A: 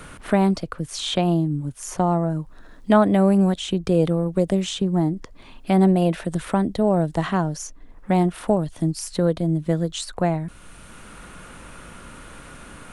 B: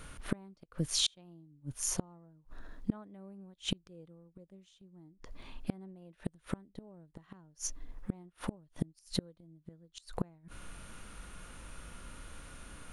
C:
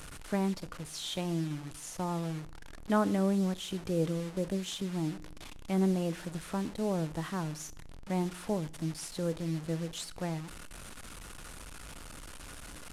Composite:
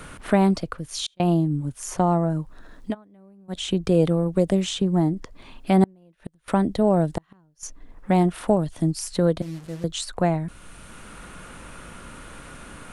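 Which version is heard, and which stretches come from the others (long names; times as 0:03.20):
A
0:00.77–0:01.20: punch in from B
0:02.90–0:03.53: punch in from B, crossfade 0.10 s
0:05.84–0:06.48: punch in from B
0:07.18–0:07.63: punch in from B
0:09.42–0:09.84: punch in from C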